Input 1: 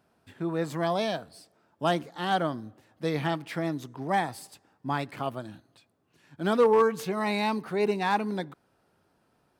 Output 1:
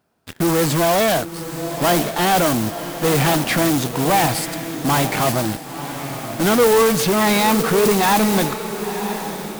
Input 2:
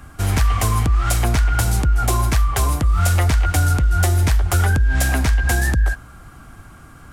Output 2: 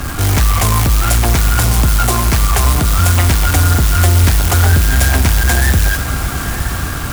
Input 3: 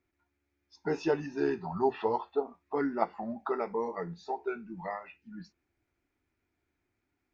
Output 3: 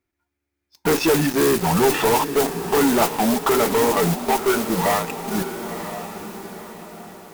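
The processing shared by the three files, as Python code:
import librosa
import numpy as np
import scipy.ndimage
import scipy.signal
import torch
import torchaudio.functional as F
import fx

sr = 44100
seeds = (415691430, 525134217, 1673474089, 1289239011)

p1 = fx.mod_noise(x, sr, seeds[0], snr_db=12)
p2 = fx.fuzz(p1, sr, gain_db=42.0, gate_db=-47.0)
p3 = p1 + F.gain(torch.from_numpy(p2), -4.0).numpy()
y = fx.echo_diffused(p3, sr, ms=988, feedback_pct=41, wet_db=-9.5)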